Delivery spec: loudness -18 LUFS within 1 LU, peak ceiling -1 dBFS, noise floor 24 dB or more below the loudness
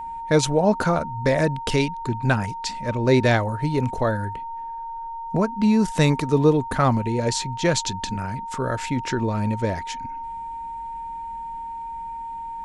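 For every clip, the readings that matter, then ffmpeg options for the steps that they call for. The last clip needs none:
steady tone 920 Hz; tone level -30 dBFS; loudness -23.5 LUFS; peak -4.0 dBFS; loudness target -18.0 LUFS
-> -af "bandreject=f=920:w=30"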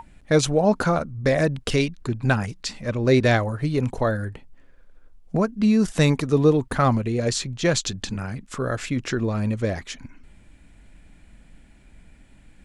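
steady tone none; loudness -23.0 LUFS; peak -4.5 dBFS; loudness target -18.0 LUFS
-> -af "volume=5dB,alimiter=limit=-1dB:level=0:latency=1"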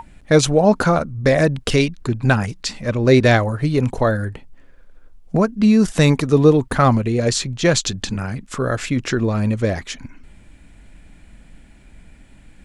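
loudness -18.0 LUFS; peak -1.0 dBFS; noise floor -47 dBFS

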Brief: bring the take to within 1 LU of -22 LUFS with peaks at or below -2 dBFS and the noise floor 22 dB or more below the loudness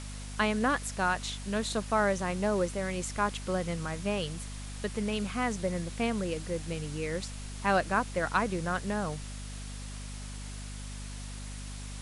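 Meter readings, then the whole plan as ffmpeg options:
hum 50 Hz; harmonics up to 250 Hz; hum level -38 dBFS; noise floor -41 dBFS; noise floor target -55 dBFS; loudness -32.5 LUFS; peak -14.0 dBFS; loudness target -22.0 LUFS
-> -af "bandreject=f=50:t=h:w=4,bandreject=f=100:t=h:w=4,bandreject=f=150:t=h:w=4,bandreject=f=200:t=h:w=4,bandreject=f=250:t=h:w=4"
-af "afftdn=nr=14:nf=-41"
-af "volume=10.5dB"

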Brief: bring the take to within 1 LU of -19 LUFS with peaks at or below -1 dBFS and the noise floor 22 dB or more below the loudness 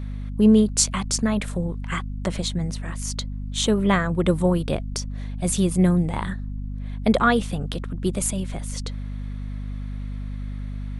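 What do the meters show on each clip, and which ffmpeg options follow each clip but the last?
hum 50 Hz; harmonics up to 250 Hz; hum level -28 dBFS; loudness -24.0 LUFS; peak -1.5 dBFS; loudness target -19.0 LUFS
-> -af "bandreject=f=50:t=h:w=4,bandreject=f=100:t=h:w=4,bandreject=f=150:t=h:w=4,bandreject=f=200:t=h:w=4,bandreject=f=250:t=h:w=4"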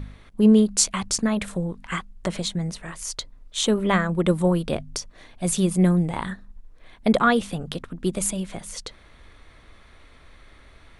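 hum none; loudness -23.5 LUFS; peak -2.0 dBFS; loudness target -19.0 LUFS
-> -af "volume=4.5dB,alimiter=limit=-1dB:level=0:latency=1"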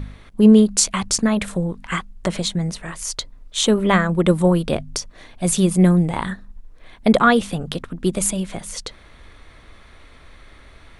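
loudness -19.0 LUFS; peak -1.0 dBFS; noise floor -47 dBFS

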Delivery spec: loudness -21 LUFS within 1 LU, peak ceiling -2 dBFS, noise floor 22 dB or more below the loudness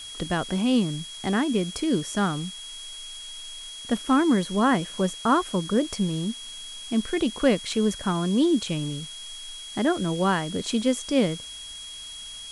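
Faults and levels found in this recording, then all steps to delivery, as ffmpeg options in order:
steady tone 3300 Hz; tone level -38 dBFS; noise floor -40 dBFS; noise floor target -47 dBFS; loudness -25.0 LUFS; peak -7.5 dBFS; loudness target -21.0 LUFS
-> -af "bandreject=f=3.3k:w=30"
-af "afftdn=nr=7:nf=-40"
-af "volume=4dB"

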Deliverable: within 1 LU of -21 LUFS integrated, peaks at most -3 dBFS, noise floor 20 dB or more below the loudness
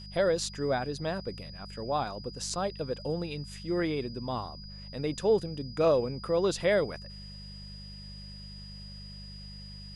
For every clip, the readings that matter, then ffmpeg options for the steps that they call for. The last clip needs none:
hum 50 Hz; harmonics up to 200 Hz; hum level -43 dBFS; steady tone 4900 Hz; tone level -47 dBFS; loudness -31.0 LUFS; peak -14.5 dBFS; loudness target -21.0 LUFS
-> -af "bandreject=f=50:t=h:w=4,bandreject=f=100:t=h:w=4,bandreject=f=150:t=h:w=4,bandreject=f=200:t=h:w=4"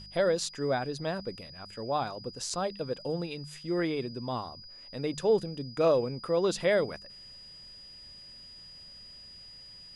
hum none; steady tone 4900 Hz; tone level -47 dBFS
-> -af "bandreject=f=4.9k:w=30"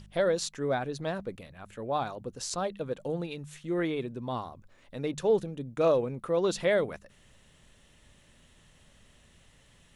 steady tone none; loudness -31.0 LUFS; peak -14.5 dBFS; loudness target -21.0 LUFS
-> -af "volume=10dB"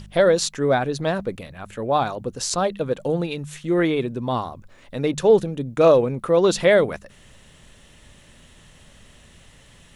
loudness -21.0 LUFS; peak -4.5 dBFS; noise floor -51 dBFS

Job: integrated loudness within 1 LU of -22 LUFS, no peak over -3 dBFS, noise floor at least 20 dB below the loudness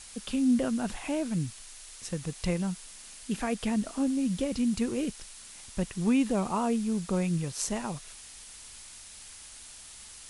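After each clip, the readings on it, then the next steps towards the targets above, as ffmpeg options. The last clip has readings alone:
noise floor -48 dBFS; noise floor target -51 dBFS; loudness -30.5 LUFS; peak -14.0 dBFS; loudness target -22.0 LUFS
-> -af "afftdn=nr=6:nf=-48"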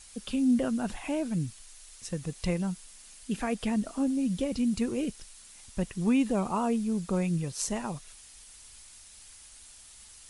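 noise floor -52 dBFS; loudness -30.5 LUFS; peak -14.0 dBFS; loudness target -22.0 LUFS
-> -af "volume=8.5dB"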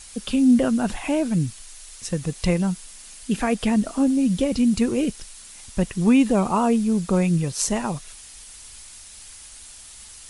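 loudness -22.0 LUFS; peak -5.5 dBFS; noise floor -43 dBFS

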